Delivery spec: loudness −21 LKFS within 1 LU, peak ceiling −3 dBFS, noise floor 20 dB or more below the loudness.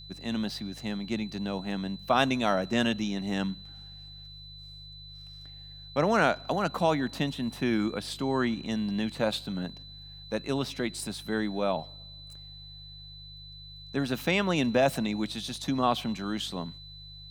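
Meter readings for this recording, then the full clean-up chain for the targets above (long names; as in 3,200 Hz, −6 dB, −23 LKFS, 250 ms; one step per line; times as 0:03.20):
mains hum 50 Hz; hum harmonics up to 150 Hz; level of the hum −48 dBFS; interfering tone 4,000 Hz; level of the tone −46 dBFS; integrated loudness −29.5 LKFS; sample peak −8.0 dBFS; target loudness −21.0 LKFS
→ hum removal 50 Hz, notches 3
notch filter 4,000 Hz, Q 30
level +8.5 dB
brickwall limiter −3 dBFS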